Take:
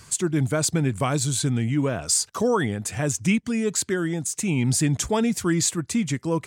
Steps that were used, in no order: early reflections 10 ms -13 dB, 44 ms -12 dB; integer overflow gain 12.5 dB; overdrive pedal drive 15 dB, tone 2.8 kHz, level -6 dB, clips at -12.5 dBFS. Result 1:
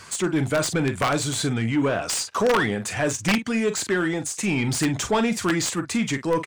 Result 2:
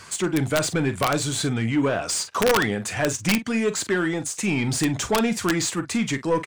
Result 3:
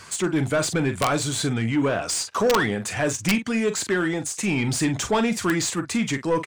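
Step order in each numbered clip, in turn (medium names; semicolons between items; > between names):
early reflections > integer overflow > overdrive pedal; overdrive pedal > early reflections > integer overflow; early reflections > overdrive pedal > integer overflow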